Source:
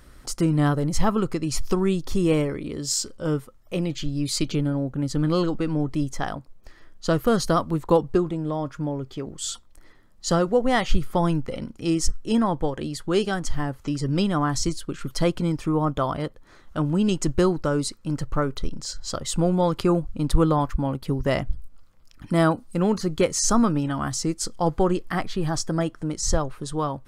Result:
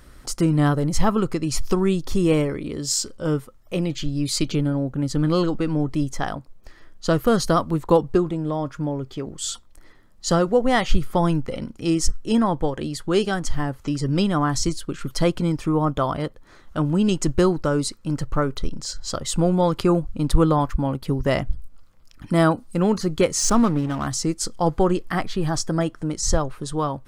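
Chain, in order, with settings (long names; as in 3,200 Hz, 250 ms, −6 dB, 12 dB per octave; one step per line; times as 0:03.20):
0:23.39–0:24.07: slack as between gear wheels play −28.5 dBFS
level +2 dB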